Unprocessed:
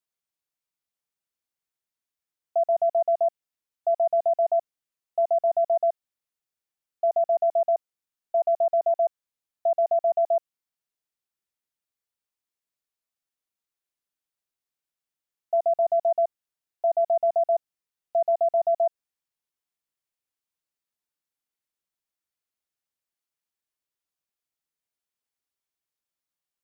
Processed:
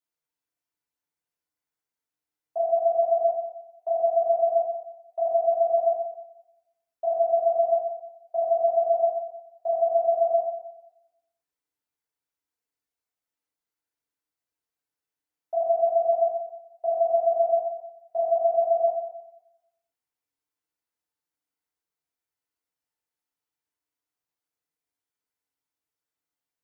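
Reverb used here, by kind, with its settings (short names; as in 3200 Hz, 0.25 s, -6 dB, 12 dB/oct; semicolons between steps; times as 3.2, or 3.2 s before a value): FDN reverb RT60 0.91 s, low-frequency decay 0.7×, high-frequency decay 0.35×, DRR -8 dB; gain -7.5 dB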